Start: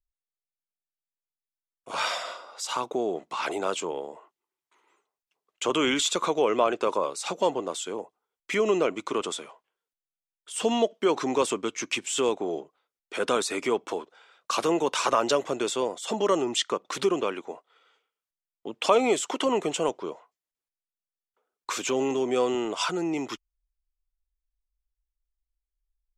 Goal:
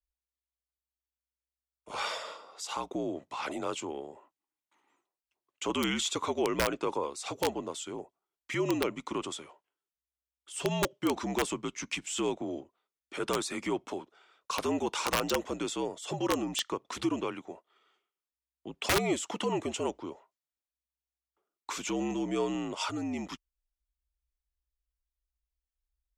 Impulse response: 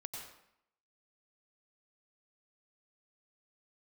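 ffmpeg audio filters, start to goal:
-af "afreqshift=-63,aeval=exprs='(mod(4.47*val(0)+1,2)-1)/4.47':c=same,volume=0.501"

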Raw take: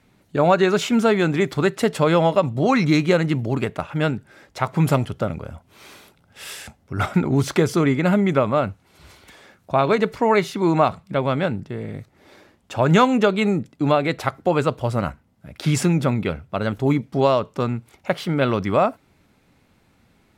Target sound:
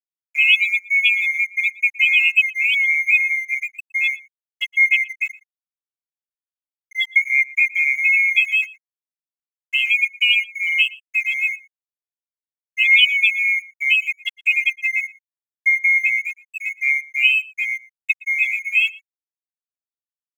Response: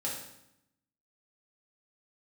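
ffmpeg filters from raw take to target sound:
-filter_complex "[0:a]afftfilt=real='real(if(lt(b,920),b+92*(1-2*mod(floor(b/92),2)),b),0)':imag='imag(if(lt(b,920),b+92*(1-2*mod(floor(b/92),2)),b),0)':win_size=2048:overlap=0.75,highpass=730,afftfilt=real='re*gte(hypot(re,im),0.447)':imag='im*gte(hypot(re,im),0.447)':win_size=1024:overlap=0.75,aecho=1:1:2.4:0.63,aeval=exprs='sgn(val(0))*max(abs(val(0))-0.00708,0)':c=same,asplit=2[s0][s1];[s1]adelay=116.6,volume=0.0891,highshelf=f=4000:g=-2.62[s2];[s0][s2]amix=inputs=2:normalize=0"

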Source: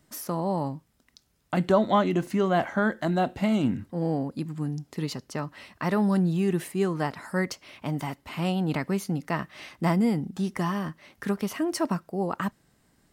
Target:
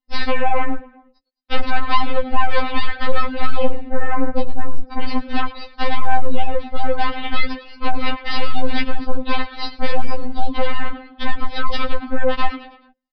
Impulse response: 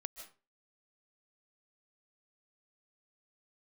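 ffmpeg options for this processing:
-filter_complex "[0:a]afftdn=nr=27:nf=-42,aecho=1:1:4.9:0.59,acompressor=threshold=0.02:ratio=4,aeval=exprs='0.1*(cos(1*acos(clip(val(0)/0.1,-1,1)))-cos(1*PI/2))+0.00631*(cos(3*acos(clip(val(0)/0.1,-1,1)))-cos(3*PI/2))+0.0158*(cos(7*acos(clip(val(0)/0.1,-1,1)))-cos(7*PI/2))+0.0501*(cos(8*acos(clip(val(0)/0.1,-1,1)))-cos(8*PI/2))':c=same,aresample=11025,aresample=44100,asplit=2[s0][s1];[s1]asplit=4[s2][s3][s4][s5];[s2]adelay=107,afreqshift=-110,volume=0.141[s6];[s3]adelay=214,afreqshift=-220,volume=0.0638[s7];[s4]adelay=321,afreqshift=-330,volume=0.0285[s8];[s5]adelay=428,afreqshift=-440,volume=0.0129[s9];[s6][s7][s8][s9]amix=inputs=4:normalize=0[s10];[s0][s10]amix=inputs=2:normalize=0,alimiter=level_in=14.1:limit=0.891:release=50:level=0:latency=1,afftfilt=real='re*3.46*eq(mod(b,12),0)':imag='im*3.46*eq(mod(b,12),0)':win_size=2048:overlap=0.75,volume=0.501"

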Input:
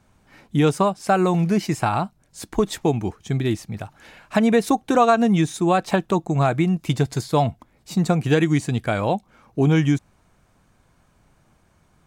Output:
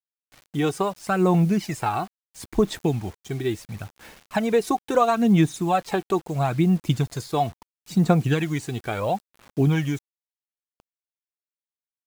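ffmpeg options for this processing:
-af "aphaser=in_gain=1:out_gain=1:delay=2.7:decay=0.52:speed=0.74:type=sinusoidal,acrusher=bits=6:mix=0:aa=0.000001,volume=0.562"

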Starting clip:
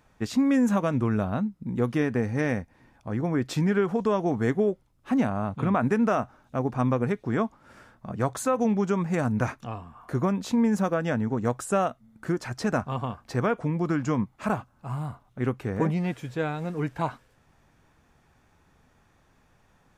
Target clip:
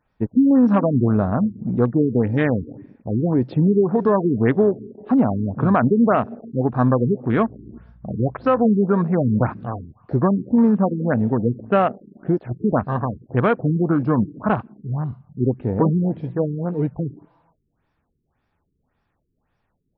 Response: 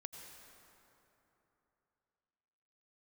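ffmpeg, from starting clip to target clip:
-filter_complex "[0:a]asplit=2[s0][s1];[1:a]atrim=start_sample=2205,afade=t=out:st=0.33:d=0.01,atrim=end_sample=14994,asetrate=25137,aresample=44100[s2];[s1][s2]afir=irnorm=-1:irlink=0,volume=0.251[s3];[s0][s3]amix=inputs=2:normalize=0,asettb=1/sr,asplit=3[s4][s5][s6];[s4]atrim=end=7.314[s7];[s5]atrim=start=7.31:end=8.65,asetpts=PTS-STARTPTS,afade=t=in:d=0.004:c=qsin,afade=t=out:st=1.336:d=0.004:c=qsin,aeval=exprs='val(0)+0.00251*(sin(2*PI*60*n/s)+sin(2*PI*2*60*n/s)/2+sin(2*PI*3*60*n/s)/3+sin(2*PI*4*60*n/s)/4+sin(2*PI*5*60*n/s)/5)':c=same[s8];[s6]atrim=start=8.646[s9];[s7][s8]acrossfade=d=0.004:c1=hsin:c2=qsin[s10];[s10][s9]acrossfade=d=0.004:c1=qsin:c2=hsin,acontrast=59,afwtdn=0.0447,afftfilt=real='re*lt(b*sr/1024,430*pow(5900/430,0.5+0.5*sin(2*PI*1.8*pts/sr)))':imag='im*lt(b*sr/1024,430*pow(5900/430,0.5+0.5*sin(2*PI*1.8*pts/sr)))':win_size=1024:overlap=0.75"

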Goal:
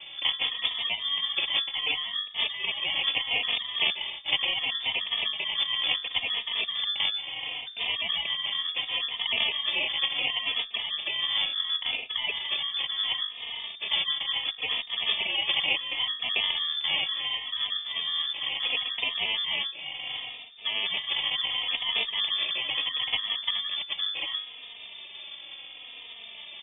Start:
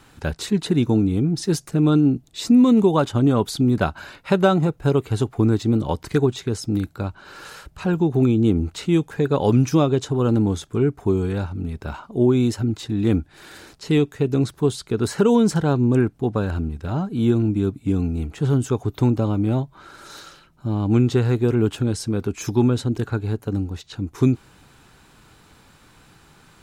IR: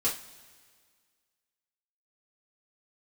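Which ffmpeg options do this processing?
-filter_complex "[0:a]bandreject=f=50:t=h:w=6,bandreject=f=100:t=h:w=6,bandreject=f=150:t=h:w=6,bandreject=f=200:t=h:w=6,bandreject=f=250:t=h:w=6,bandreject=f=300:t=h:w=6,bandreject=f=350:t=h:w=6,bandreject=f=400:t=h:w=6,bandreject=f=450:t=h:w=6,afftfilt=real='re*lt(hypot(re,im),0.282)':imag='im*lt(hypot(re,im),0.282)':win_size=1024:overlap=0.75,asplit=2[s0][s1];[s1]acompressor=threshold=0.00631:ratio=12,volume=0.944[s2];[s0][s2]amix=inputs=2:normalize=0,acrusher=samples=21:mix=1:aa=0.000001,lowpass=f=3100:t=q:w=0.5098,lowpass=f=3100:t=q:w=0.6013,lowpass=f=3100:t=q:w=0.9,lowpass=f=3100:t=q:w=2.563,afreqshift=-3600,asplit=2[s3][s4];[s4]adelay=3.1,afreqshift=-0.71[s5];[s3][s5]amix=inputs=2:normalize=1,volume=2"

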